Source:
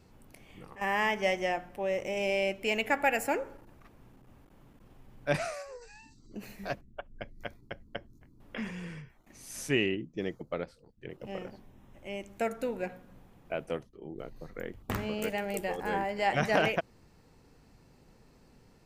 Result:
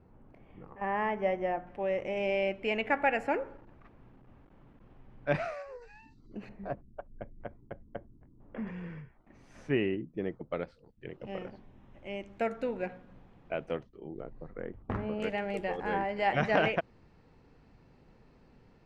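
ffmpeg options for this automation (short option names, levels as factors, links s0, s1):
-af "asetnsamples=n=441:p=0,asendcmd='1.67 lowpass f 2500;6.49 lowpass f 1000;8.67 lowpass f 1700;10.51 lowpass f 3500;14.2 lowpass f 1400;15.2 lowpass f 3200',lowpass=1300"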